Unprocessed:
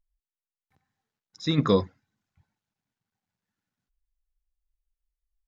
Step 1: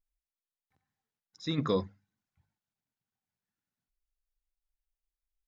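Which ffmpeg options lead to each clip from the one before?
ffmpeg -i in.wav -af "bandreject=frequency=50:width_type=h:width=6,bandreject=frequency=100:width_type=h:width=6,bandreject=frequency=150:width_type=h:width=6,bandreject=frequency=200:width_type=h:width=6,volume=-7dB" out.wav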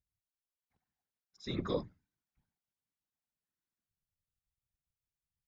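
ffmpeg -i in.wav -af "afftfilt=real='hypot(re,im)*cos(2*PI*random(0))':imag='hypot(re,im)*sin(2*PI*random(1))':win_size=512:overlap=0.75" out.wav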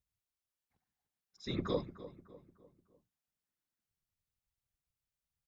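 ffmpeg -i in.wav -filter_complex "[0:a]asplit=2[link_01][link_02];[link_02]adelay=300,lowpass=frequency=2100:poles=1,volume=-14.5dB,asplit=2[link_03][link_04];[link_04]adelay=300,lowpass=frequency=2100:poles=1,volume=0.45,asplit=2[link_05][link_06];[link_06]adelay=300,lowpass=frequency=2100:poles=1,volume=0.45,asplit=2[link_07][link_08];[link_08]adelay=300,lowpass=frequency=2100:poles=1,volume=0.45[link_09];[link_01][link_03][link_05][link_07][link_09]amix=inputs=5:normalize=0" out.wav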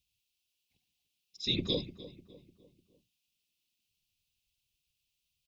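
ffmpeg -i in.wav -af "firequalizer=gain_entry='entry(330,0);entry(1400,-23);entry(2600,15);entry(7400,5)':delay=0.05:min_phase=1,volume=2.5dB" out.wav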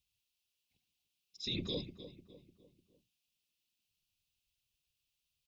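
ffmpeg -i in.wav -af "alimiter=level_in=1.5dB:limit=-24dB:level=0:latency=1:release=18,volume=-1.5dB,volume=-3dB" out.wav

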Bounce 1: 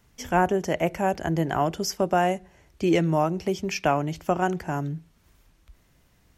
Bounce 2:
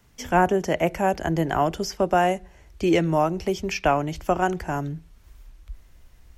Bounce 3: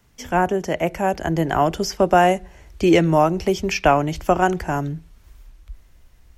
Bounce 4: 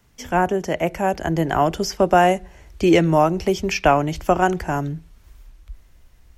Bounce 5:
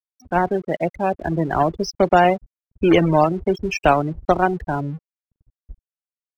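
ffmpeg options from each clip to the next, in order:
ffmpeg -i in.wav -filter_complex "[0:a]asubboost=boost=6.5:cutoff=59,acrossover=split=230|4700[link_01][link_02][link_03];[link_03]alimiter=level_in=8dB:limit=-24dB:level=0:latency=1:release=243,volume=-8dB[link_04];[link_01][link_02][link_04]amix=inputs=3:normalize=0,volume=2.5dB" out.wav
ffmpeg -i in.wav -af "dynaudnorm=framelen=230:gausssize=13:maxgain=11.5dB" out.wav
ffmpeg -i in.wav -af anull out.wav
ffmpeg -i in.wav -af "acrusher=bits=2:mode=log:mix=0:aa=0.000001,afftfilt=real='re*gte(hypot(re,im),0.112)':imag='im*gte(hypot(re,im),0.112)':win_size=1024:overlap=0.75,aeval=exprs='sgn(val(0))*max(abs(val(0))-0.00531,0)':channel_layout=same" out.wav

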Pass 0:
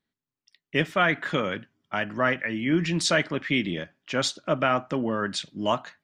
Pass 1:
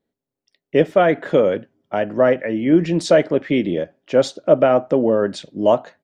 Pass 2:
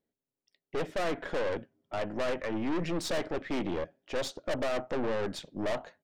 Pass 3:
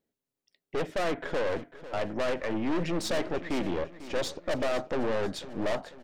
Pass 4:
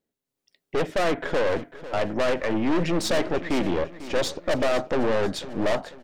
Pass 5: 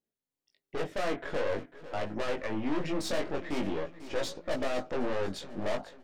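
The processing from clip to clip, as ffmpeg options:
ffmpeg -i in.wav -af "firequalizer=gain_entry='entry(150,0);entry(500,12);entry(1100,-5);entry(2500,-7)':delay=0.05:min_phase=1,volume=4dB" out.wav
ffmpeg -i in.wav -af "aeval=exprs='(tanh(15.8*val(0)+0.65)-tanh(0.65))/15.8':channel_layout=same,volume=-5dB" out.wav
ffmpeg -i in.wav -af "aecho=1:1:497|994|1491|1988|2485:0.178|0.0871|0.0427|0.0209|0.0103,volume=2dB" out.wav
ffmpeg -i in.wav -af "dynaudnorm=framelen=220:gausssize=3:maxgain=6dB" out.wav
ffmpeg -i in.wav -af "flanger=delay=18:depth=3.3:speed=0.47,volume=-5.5dB" out.wav

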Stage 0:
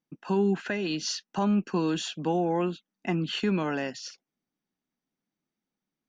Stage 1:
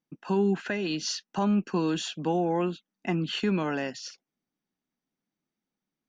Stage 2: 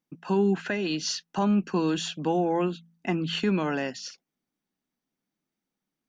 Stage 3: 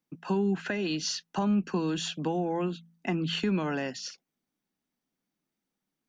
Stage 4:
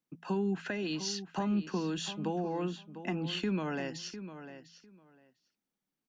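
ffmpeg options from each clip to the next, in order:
ffmpeg -i in.wav -af anull out.wav
ffmpeg -i in.wav -af "bandreject=frequency=55.82:width_type=h:width=4,bandreject=frequency=111.64:width_type=h:width=4,bandreject=frequency=167.46:width_type=h:width=4,bandreject=frequency=223.28:width_type=h:width=4,volume=1.5dB" out.wav
ffmpeg -i in.wav -filter_complex "[0:a]acrossover=split=180[link_01][link_02];[link_02]acompressor=threshold=-28dB:ratio=4[link_03];[link_01][link_03]amix=inputs=2:normalize=0" out.wav
ffmpeg -i in.wav -filter_complex "[0:a]asplit=2[link_01][link_02];[link_02]adelay=701,lowpass=frequency=3900:poles=1,volume=-11.5dB,asplit=2[link_03][link_04];[link_04]adelay=701,lowpass=frequency=3900:poles=1,volume=0.17[link_05];[link_01][link_03][link_05]amix=inputs=3:normalize=0,volume=-4.5dB" out.wav

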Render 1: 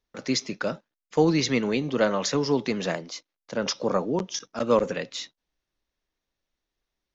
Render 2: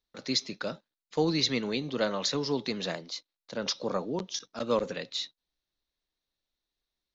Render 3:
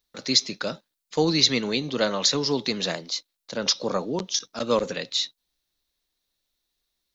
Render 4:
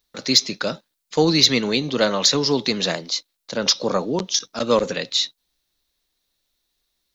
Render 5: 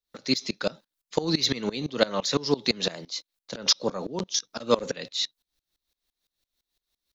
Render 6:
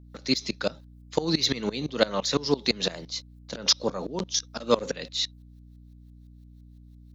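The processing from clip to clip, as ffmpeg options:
ffmpeg -i in.wav -af "equalizer=frequency=4000:width_type=o:width=0.5:gain=11,volume=-6.5dB" out.wav
ffmpeg -i in.wav -af "highshelf=frequency=4500:gain=9,volume=4.5dB" out.wav
ffmpeg -i in.wav -af "acontrast=23" out.wav
ffmpeg -i in.wav -af "aeval=exprs='val(0)*pow(10,-22*if(lt(mod(-5.9*n/s,1),2*abs(-5.9)/1000),1-mod(-5.9*n/s,1)/(2*abs(-5.9)/1000),(mod(-5.9*n/s,1)-2*abs(-5.9)/1000)/(1-2*abs(-5.9)/1000))/20)':channel_layout=same" out.wav
ffmpeg -i in.wav -af "aeval=exprs='val(0)+0.00398*(sin(2*PI*60*n/s)+sin(2*PI*2*60*n/s)/2+sin(2*PI*3*60*n/s)/3+sin(2*PI*4*60*n/s)/4+sin(2*PI*5*60*n/s)/5)':channel_layout=same" out.wav

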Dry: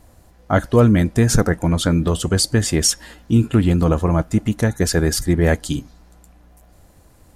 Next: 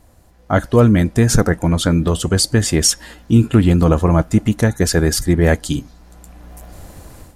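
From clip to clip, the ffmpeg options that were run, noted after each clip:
ffmpeg -i in.wav -af "dynaudnorm=framelen=300:gausssize=3:maxgain=14dB,volume=-1dB" out.wav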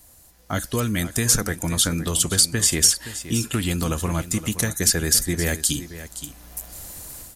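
ffmpeg -i in.wav -filter_complex "[0:a]acrossover=split=450|1200|2900[link_01][link_02][link_03][link_04];[link_01]acompressor=threshold=-14dB:ratio=4[link_05];[link_02]acompressor=threshold=-30dB:ratio=4[link_06];[link_03]acompressor=threshold=-27dB:ratio=4[link_07];[link_04]acompressor=threshold=-25dB:ratio=4[link_08];[link_05][link_06][link_07][link_08]amix=inputs=4:normalize=0,aecho=1:1:520:0.211,crystalizer=i=6.5:c=0,volume=-8dB" out.wav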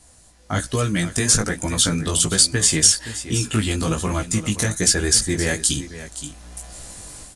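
ffmpeg -i in.wav -af "aresample=22050,aresample=44100,flanger=delay=15:depth=5.2:speed=1.2,volume=5.5dB" -ar 48000 -c:a sbc -b:a 128k out.sbc

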